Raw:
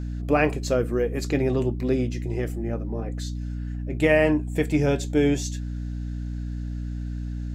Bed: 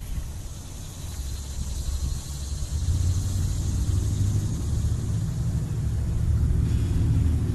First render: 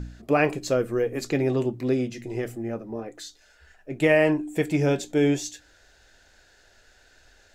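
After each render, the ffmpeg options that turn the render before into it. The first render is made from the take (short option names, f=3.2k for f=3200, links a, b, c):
-af "bandreject=f=60:t=h:w=4,bandreject=f=120:t=h:w=4,bandreject=f=180:t=h:w=4,bandreject=f=240:t=h:w=4,bandreject=f=300:t=h:w=4"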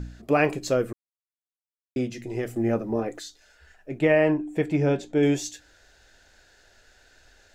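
-filter_complex "[0:a]asettb=1/sr,asplit=3[a][b][c];[a]atrim=end=3.994[d];[b]atrim=start=3.99:end=5.23,asetpts=PTS-STARTPTS,afade=t=in:d=0.004:c=qsin,afade=t=out:st=1.236:d=0.004:c=qsin,aemphasis=mode=reproduction:type=75kf[e];[c]atrim=start=5.226[f];[d][e]acrossfade=d=0.004:c1=hsin:c2=qsin[g];[g][f]acrossfade=d=0.004:c1=qsin:c2=hsin,asplit=5[h][i][j][k][l];[h]atrim=end=0.93,asetpts=PTS-STARTPTS,afade=t=out:st=0.926:d=0.004:c=hsin[m];[i]atrim=start=0.93:end=1.96,asetpts=PTS-STARTPTS,volume=0[n];[j]atrim=start=1.96:end=2.562,asetpts=PTS-STARTPTS,afade=t=in:d=0.004:c=hsin[o];[k]atrim=start=2.558:end=3.192,asetpts=PTS-STARTPTS,volume=7dB[p];[l]atrim=start=3.188[q];[m][n][o]concat=n=3:v=0:a=1[r];[r][p]acrossfade=d=0.004:c1=hsin:c2=hsin[s];[s][q]acrossfade=d=0.004:c1=hsin:c2=hsin"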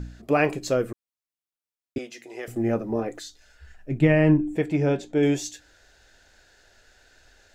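-filter_complex "[0:a]asettb=1/sr,asplit=3[a][b][c];[a]atrim=end=1.984[d];[b]atrim=start=1.98:end=2.48,asetpts=PTS-STARTPTS,afade=t=in:d=0.004:c=qsin,afade=t=out:st=0.496:d=0.004:c=qsin,highpass=560[e];[c]atrim=start=2.476[f];[d][e]acrossfade=d=0.004:c1=hsin:c2=qsin[g];[g][f]acrossfade=d=0.004:c1=qsin:c2=hsin,asettb=1/sr,asplit=3[h][i][j];[h]atrim=end=3.104[k];[i]atrim=start=3.1:end=4.56,asetpts=PTS-STARTPTS,afade=t=in:d=0.004:c=qsin,afade=t=out:st=1.456:d=0.004:c=qsin,asubboost=boost=12:cutoff=240[l];[j]atrim=start=4.556[m];[k][l]acrossfade=d=0.004:c1=hsin:c2=qsin[n];[n][m]acrossfade=d=0.004:c1=qsin:c2=hsin"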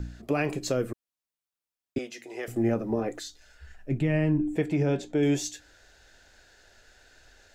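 -filter_complex "[0:a]acrossover=split=300|3000[a][b][c];[b]acompressor=threshold=-24dB:ratio=6[d];[a][d][c]amix=inputs=3:normalize=0,alimiter=limit=-16.5dB:level=0:latency=1:release=54"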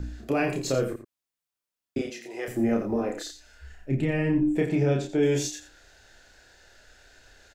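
-filter_complex "[0:a]asplit=2[a][b];[b]adelay=30,volume=-3dB[c];[a][c]amix=inputs=2:normalize=0,aecho=1:1:86:0.282"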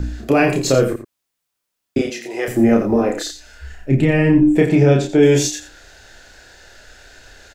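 -af "volume=11dB"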